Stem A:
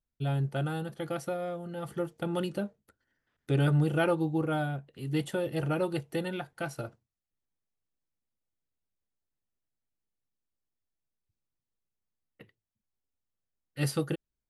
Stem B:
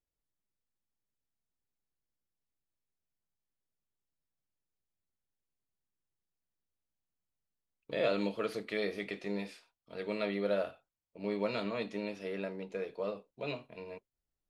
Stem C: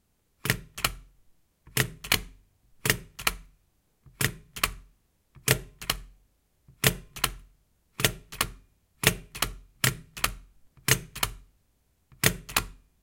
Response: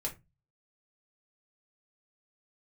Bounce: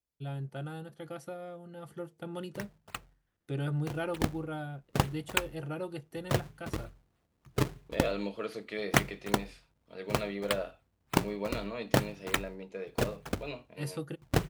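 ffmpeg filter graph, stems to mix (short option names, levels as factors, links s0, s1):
-filter_complex "[0:a]volume=0.376,asplit=2[s0][s1];[s1]volume=0.0708[s2];[1:a]volume=0.794[s3];[2:a]dynaudnorm=f=190:g=5:m=3.76,acrusher=samples=34:mix=1:aa=0.000001:lfo=1:lforange=54.4:lforate=3.3,adelay=2100,volume=0.422,afade=t=in:st=3.91:d=0.42:silence=0.266073,asplit=2[s4][s5];[s5]volume=0.126[s6];[3:a]atrim=start_sample=2205[s7];[s2][s6]amix=inputs=2:normalize=0[s8];[s8][s7]afir=irnorm=-1:irlink=0[s9];[s0][s3][s4][s9]amix=inputs=4:normalize=0,highpass=49"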